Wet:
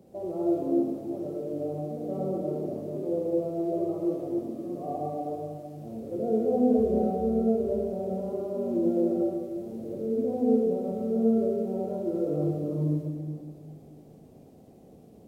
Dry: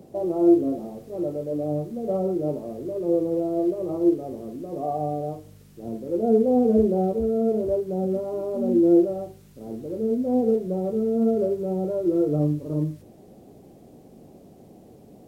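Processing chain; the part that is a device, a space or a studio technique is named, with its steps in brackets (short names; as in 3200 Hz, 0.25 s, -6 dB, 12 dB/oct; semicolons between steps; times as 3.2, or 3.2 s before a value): stairwell (reverb RT60 2.0 s, pre-delay 43 ms, DRR -2 dB); gain -9 dB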